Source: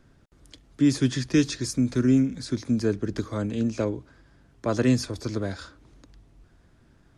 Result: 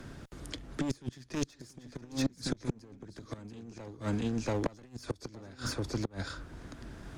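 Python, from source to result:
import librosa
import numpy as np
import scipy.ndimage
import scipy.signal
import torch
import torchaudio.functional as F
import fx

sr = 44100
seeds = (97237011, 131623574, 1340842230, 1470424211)

p1 = fx.clip_asym(x, sr, top_db=-30.0, bottom_db=-15.0)
p2 = fx.over_compress(p1, sr, threshold_db=-27.0, ratio=-0.5)
p3 = p2 + fx.echo_single(p2, sr, ms=685, db=-7.0, dry=0)
p4 = fx.gate_flip(p3, sr, shuts_db=-21.0, range_db=-28)
p5 = fx.band_squash(p4, sr, depth_pct=40)
y = p5 * librosa.db_to_amplitude(3.0)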